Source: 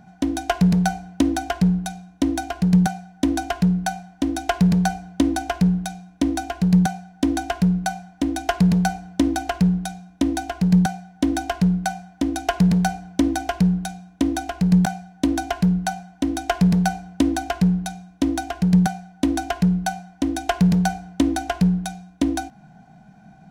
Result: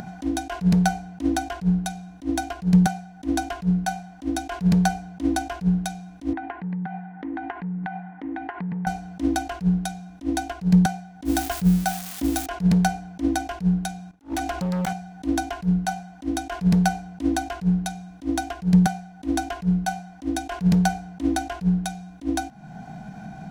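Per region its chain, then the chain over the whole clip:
0:06.33–0:08.87: loudspeaker in its box 150–2,200 Hz, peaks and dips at 160 Hz +4 dB, 620 Hz −9 dB, 880 Hz +7 dB, 1,900 Hz +6 dB + downward compressor 8 to 1, threshold −27 dBFS
0:11.25–0:12.46: spike at every zero crossing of −21 dBFS + parametric band 77 Hz +4 dB 2.9 octaves
0:14.11–0:14.93: noise gate −46 dBFS, range −55 dB + gain into a clipping stage and back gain 23.5 dB + envelope flattener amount 50%
whole clip: upward compression, threshold −27 dBFS; level that may rise only so fast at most 290 dB per second

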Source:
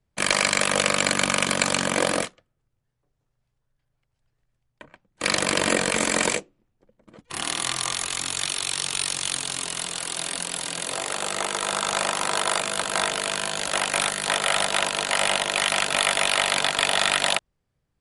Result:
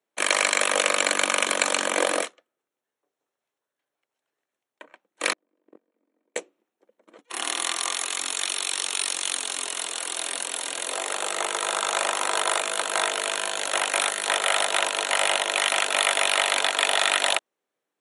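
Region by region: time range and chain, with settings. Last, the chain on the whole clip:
0:05.33–0:06.36: resonant band-pass 260 Hz, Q 2.5 + noise gate −26 dBFS, range −38 dB
whole clip: high-pass filter 310 Hz 24 dB per octave; notch filter 4,800 Hz, Q 5.6

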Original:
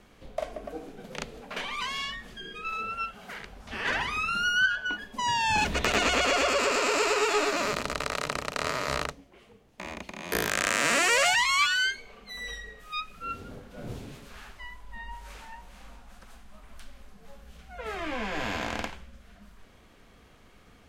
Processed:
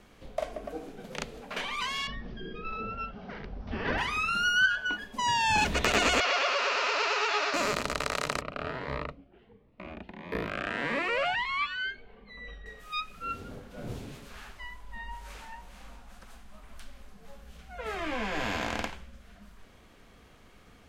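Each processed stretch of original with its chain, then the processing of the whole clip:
0:02.07–0:03.98: Butterworth low-pass 5,800 Hz 72 dB per octave + tilt shelving filter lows +8.5 dB, about 830 Hz
0:06.20–0:07.54: variable-slope delta modulation 32 kbit/s + high-pass filter 680 Hz
0:08.41–0:12.66: high-frequency loss of the air 440 metres + phaser whose notches keep moving one way rising 1.5 Hz
whole clip: no processing

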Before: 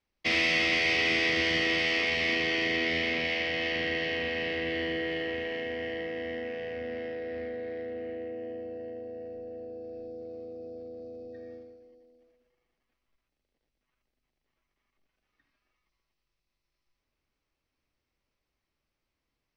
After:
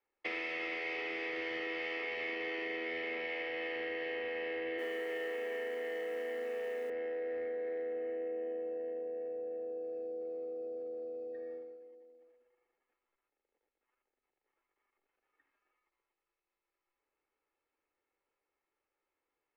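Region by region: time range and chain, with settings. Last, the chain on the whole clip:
0:04.78–0:06.90: high-pass filter 170 Hz 24 dB per octave + noise that follows the level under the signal 12 dB + flutter between parallel walls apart 5.5 metres, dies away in 0.33 s
whole clip: three-way crossover with the lows and the highs turned down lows −22 dB, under 290 Hz, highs −19 dB, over 2,300 Hz; downward compressor, threshold −37 dBFS; comb filter 2.3 ms, depth 43%

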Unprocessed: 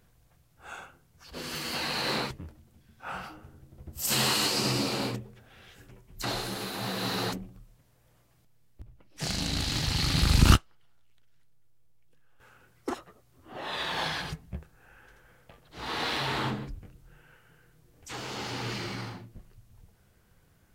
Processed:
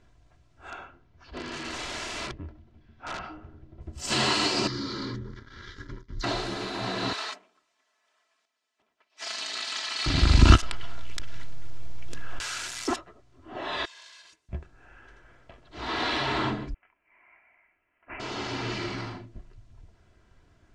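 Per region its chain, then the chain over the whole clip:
0:00.70–0:03.81: high-frequency loss of the air 160 metres + wrap-around overflow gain 31 dB
0:04.67–0:06.24: leveller curve on the samples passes 3 + downward compressor, threshold −33 dBFS + phaser with its sweep stopped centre 2,600 Hz, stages 6
0:07.13–0:10.06: lower of the sound and its delayed copy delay 4.6 ms + high-pass filter 1,000 Hz
0:10.56–0:12.96: spike at every zero crossing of −25 dBFS + parametric band 380 Hz −3.5 dB 0.94 octaves + envelope flattener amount 100%
0:13.85–0:14.49: lower of the sound and its delayed copy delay 1.9 ms + first difference + downward compressor 2 to 1, threshold −54 dBFS
0:16.74–0:18.20: high-pass filter 1,200 Hz 24 dB per octave + voice inversion scrambler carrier 3,700 Hz
whole clip: low-pass filter 7,600 Hz 24 dB per octave; high-shelf EQ 4,500 Hz −7 dB; comb filter 3 ms, depth 49%; level +3 dB

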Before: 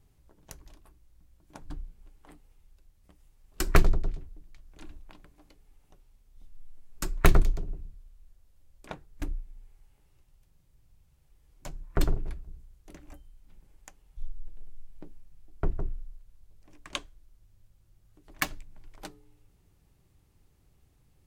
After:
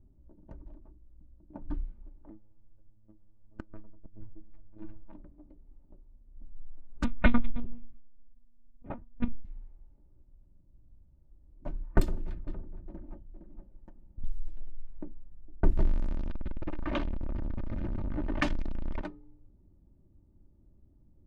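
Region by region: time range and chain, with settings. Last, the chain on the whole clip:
0:02.30–0:05.12: phases set to zero 107 Hz + phase shifter 1.6 Hz, delay 4.4 ms, feedback 25% + gate with flip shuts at −18 dBFS, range −28 dB
0:07.04–0:09.45: downward compressor 2.5 to 1, threshold −21 dBFS + one-pitch LPC vocoder at 8 kHz 240 Hz
0:12.00–0:14.24: lower of the sound and its delayed copy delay 5.6 ms + downward compressor 2 to 1, threshold −37 dBFS + single-tap delay 463 ms −7 dB
0:15.76–0:19.01: converter with a step at zero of −29.5 dBFS + head-to-tape spacing loss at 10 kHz 23 dB
whole clip: low-pass that shuts in the quiet parts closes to 460 Hz, open at −26.5 dBFS; parametric band 180 Hz +8 dB 0.96 octaves; comb filter 3.3 ms, depth 61%; level +1 dB

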